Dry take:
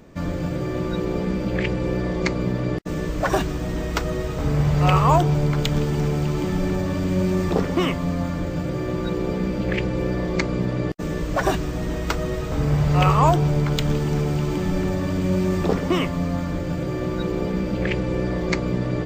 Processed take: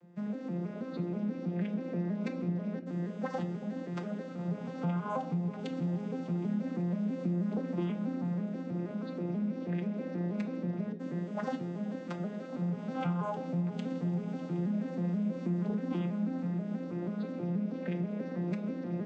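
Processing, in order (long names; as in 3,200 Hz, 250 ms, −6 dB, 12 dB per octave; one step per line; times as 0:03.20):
vocoder with an arpeggio as carrier minor triad, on F3, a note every 161 ms
downward compressor, threshold −21 dBFS, peak gain reduction 8.5 dB
bucket-brigade delay 382 ms, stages 2,048, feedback 83%, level −16.5 dB
on a send at −8 dB: convolution reverb RT60 0.50 s, pre-delay 4 ms
on the sum: level −9 dB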